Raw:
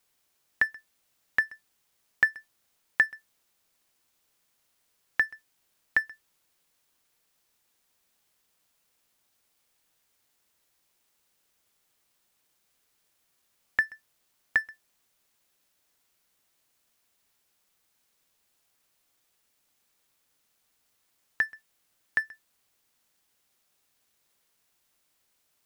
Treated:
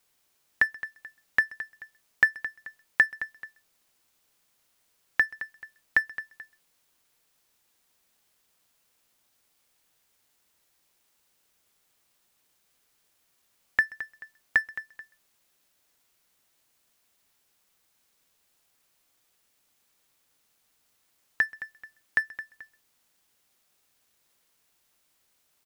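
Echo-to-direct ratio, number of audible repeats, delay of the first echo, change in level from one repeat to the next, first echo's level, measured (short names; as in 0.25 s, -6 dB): -13.5 dB, 2, 0.217 s, -8.5 dB, -14.0 dB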